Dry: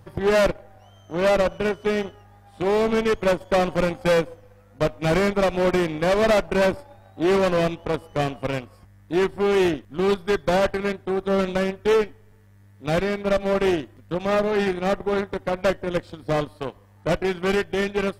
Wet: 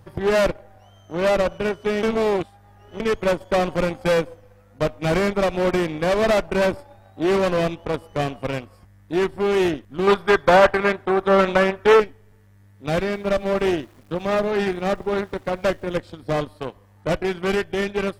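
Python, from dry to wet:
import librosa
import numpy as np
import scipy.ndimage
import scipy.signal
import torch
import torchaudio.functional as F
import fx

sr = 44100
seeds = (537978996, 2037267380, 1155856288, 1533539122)

y = fx.peak_eq(x, sr, hz=1200.0, db=10.5, octaves=2.7, at=(10.07, 12.0))
y = fx.sample_gate(y, sr, floor_db=-49.0, at=(12.89, 15.96))
y = fx.edit(y, sr, fx.reverse_span(start_s=2.03, length_s=0.97), tone=tone)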